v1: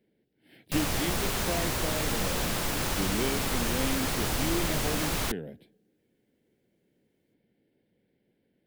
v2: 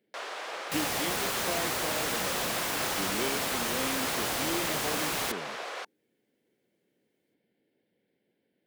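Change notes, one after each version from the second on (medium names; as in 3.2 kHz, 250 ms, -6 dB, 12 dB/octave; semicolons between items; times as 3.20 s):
first sound: unmuted; master: add high-pass 370 Hz 6 dB/octave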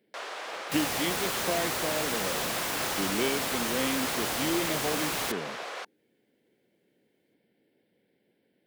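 speech +5.0 dB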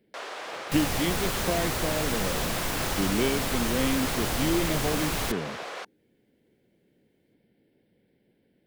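master: remove high-pass 370 Hz 6 dB/octave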